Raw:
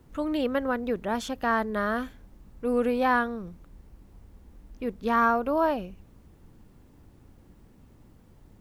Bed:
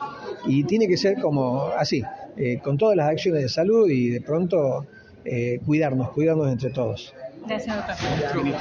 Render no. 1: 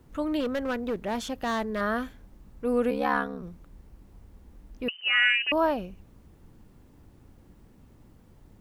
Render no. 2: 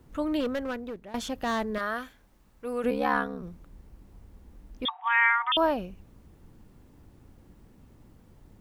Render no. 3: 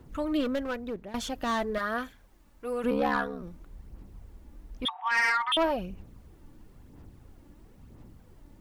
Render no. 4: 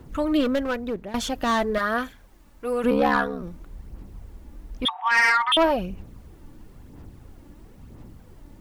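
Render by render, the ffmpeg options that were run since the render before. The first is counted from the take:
-filter_complex "[0:a]asettb=1/sr,asplit=3[s0][s1][s2];[s0]atrim=end=0.404[s3];[s1]atrim=start=0.4:end=1.81,asetpts=PTS-STARTPTS,afade=t=in:d=0.004:c=qsin,afade=t=out:st=1.406:d=0.004:c=qsin,asoftclip=type=hard:threshold=0.0596[s4];[s2]atrim=start=1.806[s5];[s3][s4]acrossfade=d=0.004:c1=hsin:c2=qsin[s6];[s6][s5]acrossfade=d=0.004:c1=qsin:c2=hsin,asettb=1/sr,asplit=3[s7][s8][s9];[s7]atrim=end=2.904[s10];[s8]atrim=start=2.9:end=3.43,asetpts=PTS-STARTPTS,afade=t=in:d=0.004:c=qsin,afade=t=out:st=0.526:d=0.004:c=qsin,aeval=exprs='val(0)*sin(2*PI*35*n/s)':c=same[s11];[s9]atrim=start=3.426[s12];[s10][s11]acrossfade=d=0.004:c1=hsin:c2=qsin[s13];[s13][s12]acrossfade=d=0.004:c1=qsin:c2=hsin,asettb=1/sr,asplit=3[s14][s15][s16];[s14]atrim=end=4.884[s17];[s15]atrim=start=4.88:end=5.52,asetpts=PTS-STARTPTS,afade=t=in:d=0.004:c=qsin,afade=t=out:st=0.636:d=0.004:c=qsin,lowpass=f=2600:t=q:w=0.5098,lowpass=f=2600:t=q:w=0.6013,lowpass=f=2600:t=q:w=0.9,lowpass=f=2600:t=q:w=2.563,afreqshift=-3100[s18];[s16]atrim=start=5.516[s19];[s17][s18]acrossfade=d=0.004:c1=hsin:c2=qsin[s20];[s20][s19]acrossfade=d=0.004:c1=qsin:c2=hsin"
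-filter_complex "[0:a]asettb=1/sr,asplit=3[s0][s1][s2];[s0]atrim=end=1.784[s3];[s1]atrim=start=1.78:end=2.84,asetpts=PTS-STARTPTS,afade=t=in:d=0.004:c=qsin,afade=t=out:st=1.056:d=0.004:c=qsin,lowshelf=f=490:g=-12[s4];[s2]atrim=start=2.836[s5];[s3][s4]acrossfade=d=0.004:c1=hsin:c2=qsin[s6];[s6][s5]acrossfade=d=0.004:c1=qsin:c2=hsin,asettb=1/sr,asplit=3[s7][s8][s9];[s7]atrim=end=4.854[s10];[s8]atrim=start=4.85:end=5.57,asetpts=PTS-STARTPTS,afade=t=in:d=0.004:c=qsin,afade=t=out:st=0.716:d=0.004:c=qsin,lowpass=f=3200:t=q:w=0.5098,lowpass=f=3200:t=q:w=0.6013,lowpass=f=3200:t=q:w=0.9,lowpass=f=3200:t=q:w=2.563,afreqshift=-3800[s11];[s9]atrim=start=5.566[s12];[s10][s11]acrossfade=d=0.004:c1=hsin:c2=qsin[s13];[s13][s12]acrossfade=d=0.004:c1=qsin:c2=hsin,asplit=2[s14][s15];[s14]atrim=end=1.14,asetpts=PTS-STARTPTS,afade=t=out:st=0.45:d=0.69:silence=0.141254[s16];[s15]atrim=start=1.14,asetpts=PTS-STARTPTS,afade=t=in:d=0.004:c=hsin:silence=0.141254[s17];[s16][s17]concat=n=2:v=0:a=1"
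-af "aphaser=in_gain=1:out_gain=1:delay=3.5:decay=0.4:speed=1:type=sinusoidal,asoftclip=type=tanh:threshold=0.112"
-af "volume=2.11"

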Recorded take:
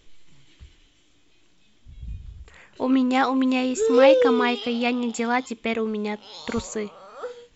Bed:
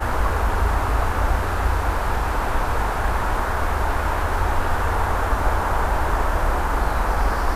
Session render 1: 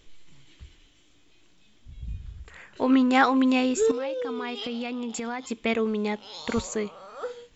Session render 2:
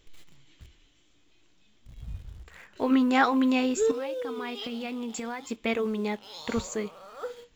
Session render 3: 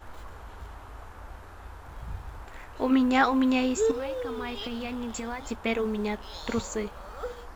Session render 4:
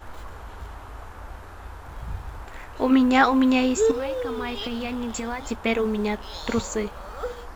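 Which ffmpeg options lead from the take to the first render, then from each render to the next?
-filter_complex "[0:a]asettb=1/sr,asplit=3[s0][s1][s2];[s0]atrim=end=2.154[s3];[s1]atrim=start=2.15:end=3.39,asetpts=PTS-STARTPTS,afade=t=in:d=0.004:c=qsin,afade=t=out:st=1.236:d=0.004:c=qsin,equalizer=f=1600:t=o:w=0.77:g=4.5[s4];[s2]atrim=start=3.386[s5];[s3][s4]acrossfade=d=0.004:c1=hsin:c2=qsin[s6];[s6][s5]acrossfade=d=0.004:c1=qsin:c2=hsin,asettb=1/sr,asplit=3[s7][s8][s9];[s7]atrim=end=3.914[s10];[s8]atrim=start=3.91:end=5.51,asetpts=PTS-STARTPTS,afade=t=in:d=0.004:c=qsin,afade=t=out:st=1.596:d=0.004:c=qsin,acompressor=threshold=0.0398:ratio=8:attack=3.2:release=140:knee=1:detection=peak[s11];[s9]atrim=start=5.506[s12];[s10][s11]acrossfade=d=0.004:c1=hsin:c2=qsin[s13];[s13][s12]acrossfade=d=0.004:c1=qsin:c2=hsin"
-filter_complex "[0:a]asplit=2[s0][s1];[s1]acrusher=bits=6:mix=0:aa=0.000001,volume=0.251[s2];[s0][s2]amix=inputs=2:normalize=0,flanger=delay=2:depth=6.7:regen=-79:speed=0.69:shape=triangular"
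-filter_complex "[1:a]volume=0.0668[s0];[0:a][s0]amix=inputs=2:normalize=0"
-af "volume=1.68"

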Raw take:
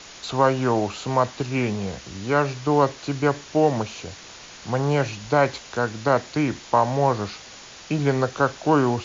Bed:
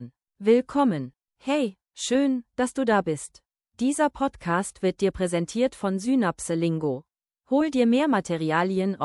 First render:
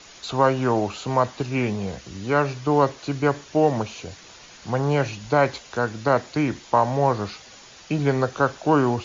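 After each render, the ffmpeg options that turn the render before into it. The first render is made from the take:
-af "afftdn=nr=6:nf=-43"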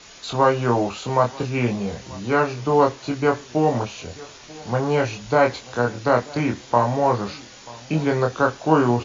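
-filter_complex "[0:a]asplit=2[s0][s1];[s1]adelay=25,volume=0.668[s2];[s0][s2]amix=inputs=2:normalize=0,asplit=2[s3][s4];[s4]adelay=937,lowpass=f=2000:p=1,volume=0.0841,asplit=2[s5][s6];[s6]adelay=937,lowpass=f=2000:p=1,volume=0.4,asplit=2[s7][s8];[s8]adelay=937,lowpass=f=2000:p=1,volume=0.4[s9];[s3][s5][s7][s9]amix=inputs=4:normalize=0"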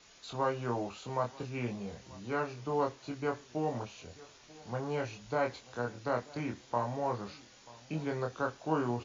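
-af "volume=0.188"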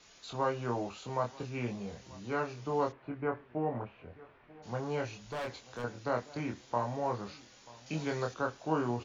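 -filter_complex "[0:a]asplit=3[s0][s1][s2];[s0]afade=t=out:st=2.91:d=0.02[s3];[s1]lowpass=f=2200:w=0.5412,lowpass=f=2200:w=1.3066,afade=t=in:st=2.91:d=0.02,afade=t=out:st=4.62:d=0.02[s4];[s2]afade=t=in:st=4.62:d=0.02[s5];[s3][s4][s5]amix=inputs=3:normalize=0,asettb=1/sr,asplit=3[s6][s7][s8];[s6]atrim=end=5.244[s9];[s7]atrim=start=5.24:end=5.84,asetpts=PTS-STARTPTS,afade=t=in:d=0.004:c=qsin,afade=t=out:st=0.596:d=0.004:c=qsin,asoftclip=type=hard:threshold=0.0178[s10];[s8]atrim=start=5.836[s11];[s9][s10]acrossfade=d=0.004:c1=hsin:c2=qsin[s12];[s12][s11]acrossfade=d=0.004:c1=qsin:c2=hsin,asettb=1/sr,asplit=3[s13][s14][s15];[s13]atrim=end=7.864[s16];[s14]atrim=start=7.86:end=8.34,asetpts=PTS-STARTPTS,afade=t=in:d=0.004:c=qsin,afade=t=out:st=0.476:d=0.004:c=qsin,highshelf=f=2200:g=8.5[s17];[s15]atrim=start=8.336[s18];[s16][s17]acrossfade=d=0.004:c1=hsin:c2=qsin[s19];[s19][s18]acrossfade=d=0.004:c1=qsin:c2=hsin"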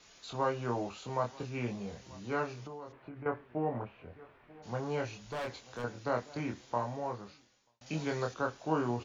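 -filter_complex "[0:a]asettb=1/sr,asplit=3[s0][s1][s2];[s0]atrim=end=2.614[s3];[s1]atrim=start=2.61:end=3.26,asetpts=PTS-STARTPTS,afade=t=in:d=0.004:c=qsin,afade=t=out:st=0.646:d=0.004:c=qsin,acompressor=threshold=0.00891:ratio=12:attack=3.2:release=140:knee=1:detection=peak[s4];[s2]atrim=start=3.256[s5];[s3][s4]acrossfade=d=0.004:c1=hsin:c2=qsin[s6];[s6][s5]acrossfade=d=0.004:c1=qsin:c2=hsin,asplit=2[s7][s8];[s7]atrim=end=7.81,asetpts=PTS-STARTPTS,afade=t=out:st=6.64:d=1.17[s9];[s8]atrim=start=7.81,asetpts=PTS-STARTPTS,afade=t=in:d=0.004:c=hsin[s10];[s9][s10]concat=n=2:v=0:a=1"

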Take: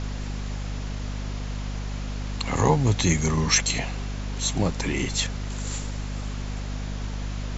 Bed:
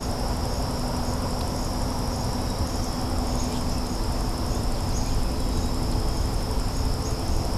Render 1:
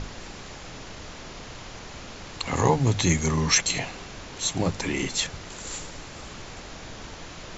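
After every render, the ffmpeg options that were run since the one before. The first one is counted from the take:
-af "bandreject=f=50:t=h:w=6,bandreject=f=100:t=h:w=6,bandreject=f=150:t=h:w=6,bandreject=f=200:t=h:w=6,bandreject=f=250:t=h:w=6"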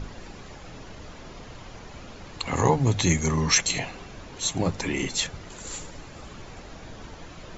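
-af "afftdn=nr=8:nf=-42"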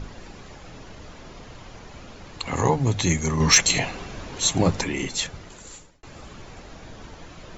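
-filter_complex "[0:a]asettb=1/sr,asplit=3[s0][s1][s2];[s0]atrim=end=3.404[s3];[s1]atrim=start=3.4:end=4.84,asetpts=PTS-STARTPTS,afade=t=in:d=0.004:c=qsin,afade=t=out:st=1.436:d=0.004:c=qsin,acontrast=41[s4];[s2]atrim=start=4.836[s5];[s3][s4]acrossfade=d=0.004:c1=hsin:c2=qsin[s6];[s6][s5]acrossfade=d=0.004:c1=qsin:c2=hsin,asplit=2[s7][s8];[s7]atrim=end=6.03,asetpts=PTS-STARTPTS,afade=t=out:st=5.39:d=0.64[s9];[s8]atrim=start=6.03,asetpts=PTS-STARTPTS,afade=t=in:d=0.004:c=hsin[s10];[s9][s10]concat=n=2:v=0:a=1"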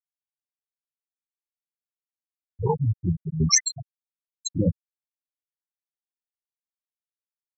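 -af "afftfilt=real='re*gte(hypot(re,im),0.501)':imag='im*gte(hypot(re,im),0.501)':win_size=1024:overlap=0.75"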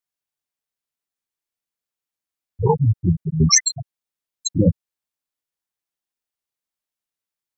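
-af "volume=2.11,alimiter=limit=0.794:level=0:latency=1"

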